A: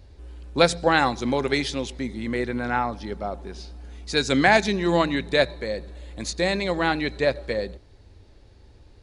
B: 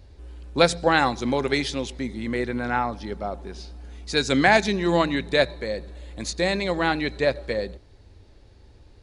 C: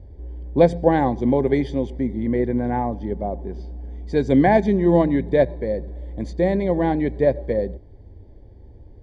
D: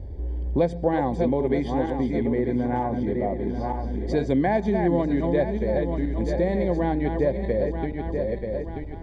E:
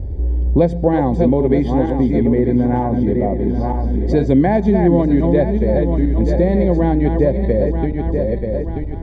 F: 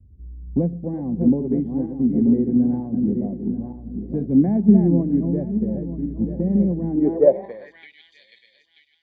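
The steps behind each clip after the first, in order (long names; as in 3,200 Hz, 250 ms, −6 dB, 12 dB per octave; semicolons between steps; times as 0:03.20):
no processing that can be heard
moving average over 33 samples; level +7 dB
feedback delay that plays each chunk backwards 466 ms, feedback 53%, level −7 dB; downward compressor 2.5 to 1, threshold −31 dBFS, peak gain reduction 14.5 dB; level +6 dB
low-shelf EQ 500 Hz +9 dB; level +2.5 dB
band-pass filter sweep 210 Hz → 3,100 Hz, 0:06.87–0:07.96; multiband upward and downward expander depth 100%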